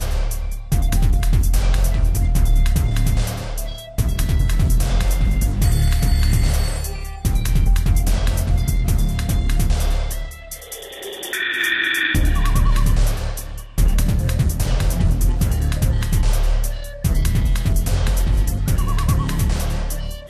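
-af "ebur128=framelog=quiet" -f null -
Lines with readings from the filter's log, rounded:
Integrated loudness:
  I:         -20.5 LUFS
  Threshold: -30.7 LUFS
Loudness range:
  LRA:         1.4 LU
  Threshold: -40.6 LUFS
  LRA low:   -21.2 LUFS
  LRA high:  -19.8 LUFS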